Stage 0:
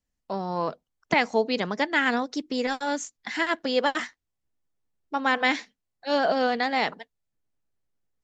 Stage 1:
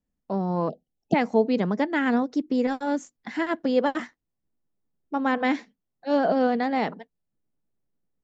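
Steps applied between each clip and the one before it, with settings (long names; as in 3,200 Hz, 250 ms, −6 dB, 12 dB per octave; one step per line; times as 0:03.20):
time-frequency box erased 0:00.69–0:01.14, 840–2,600 Hz
drawn EQ curve 110 Hz 0 dB, 180 Hz +8 dB, 4,000 Hz −10 dB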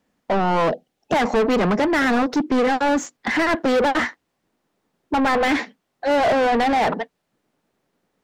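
mid-hump overdrive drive 35 dB, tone 2,200 Hz, clips at −6 dBFS
level −4.5 dB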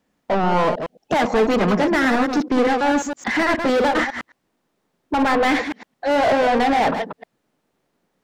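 delay that plays each chunk backwards 108 ms, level −6.5 dB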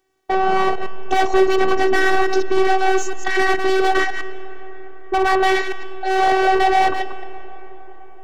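phases set to zero 381 Hz
on a send at −14 dB: convolution reverb RT60 5.4 s, pre-delay 105 ms
on the sum: level +4 dB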